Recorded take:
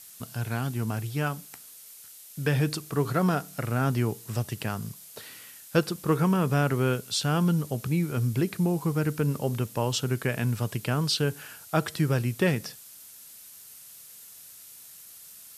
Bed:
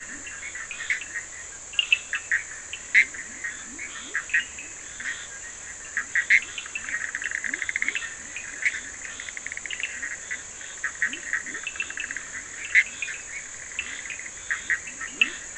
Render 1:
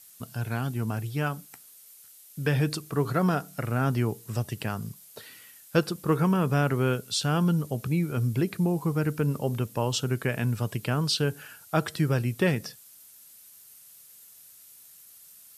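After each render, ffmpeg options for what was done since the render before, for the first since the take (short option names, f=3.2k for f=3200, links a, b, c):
-af "afftdn=nr=6:nf=-48"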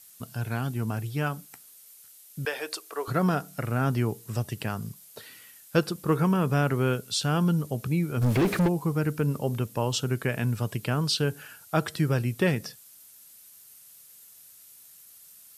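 -filter_complex "[0:a]asettb=1/sr,asplit=3[a][b][c];[a]atrim=end=2.454[d];[b]atrim=start=2.45:end=3.08,asetpts=PTS-STARTPTS,afade=t=in:d=0.004:c=qsin,afade=t=out:st=0.626:d=0.004:c=qsin,highpass=f=450:w=0.5412,highpass=f=450:w=1.3066[e];[c]atrim=start=3.076[f];[d][e]acrossfade=d=0.004:c1=hsin:c2=qsin[g];[g][f]acrossfade=d=0.004:c1=qsin:c2=hsin,asplit=3[h][i][j];[h]afade=t=out:st=8.21:d=0.02[k];[i]asplit=2[l][m];[m]highpass=f=720:p=1,volume=33dB,asoftclip=type=tanh:threshold=-15dB[n];[l][n]amix=inputs=2:normalize=0,lowpass=f=1.7k:p=1,volume=-6dB,afade=t=in:st=8.21:d=0.02,afade=t=out:st=8.67:d=0.02[o];[j]afade=t=in:st=8.67:d=0.02[p];[k][o][p]amix=inputs=3:normalize=0"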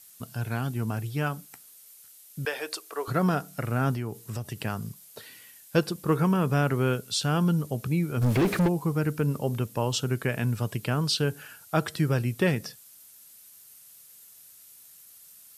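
-filter_complex "[0:a]asettb=1/sr,asplit=3[a][b][c];[a]atrim=end=3.944[d];[b]atrim=start=3.94:end=4.56,asetpts=PTS-STARTPTS,afade=t=in:d=0.004:c=qsin,afade=t=out:st=0.616:d=0.004:c=qsin,acompressor=threshold=-30dB:ratio=2.5:attack=3.2:release=140:knee=1:detection=peak[e];[c]atrim=start=4.556[f];[d][e]acrossfade=d=0.004:c1=hsin:c2=qsin[g];[g][f]acrossfade=d=0.004:c1=qsin:c2=hsin,asettb=1/sr,asplit=3[h][i][j];[h]atrim=end=5.254[k];[i]atrim=start=5.25:end=6.02,asetpts=PTS-STARTPTS,afade=t=in:d=0.004:c=qsin,afade=t=out:st=0.766:d=0.004:c=qsin,bandreject=f=1.3k:w=7.6[l];[j]atrim=start=6.016[m];[k][l]acrossfade=d=0.004:c1=hsin:c2=qsin[n];[n][m]acrossfade=d=0.004:c1=qsin:c2=hsin"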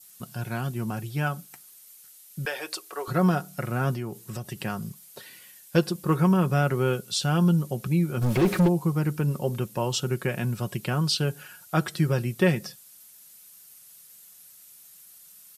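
-af "aecho=1:1:5.5:0.49,adynamicequalizer=threshold=0.00562:dfrequency=1800:dqfactor=1.8:tfrequency=1800:tqfactor=1.8:attack=5:release=100:ratio=0.375:range=1.5:mode=cutabove:tftype=bell"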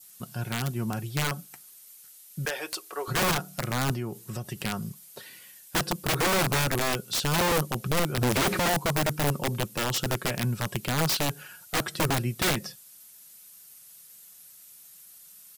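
-af "aeval=exprs='(mod(9.44*val(0)+1,2)-1)/9.44':c=same"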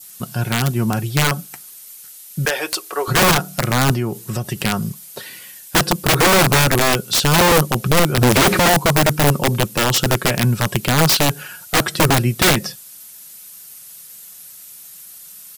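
-af "volume=11.5dB"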